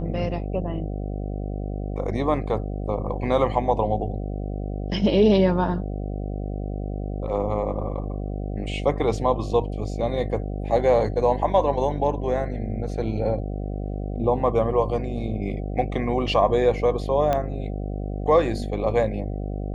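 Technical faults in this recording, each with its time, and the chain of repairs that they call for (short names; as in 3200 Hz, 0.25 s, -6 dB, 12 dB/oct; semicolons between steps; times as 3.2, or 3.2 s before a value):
buzz 50 Hz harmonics 15 -29 dBFS
17.33 pop -11 dBFS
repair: de-click; de-hum 50 Hz, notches 15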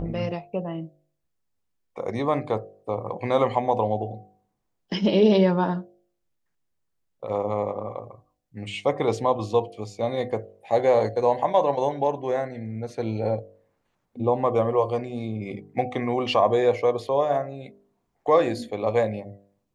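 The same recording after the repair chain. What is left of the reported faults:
17.33 pop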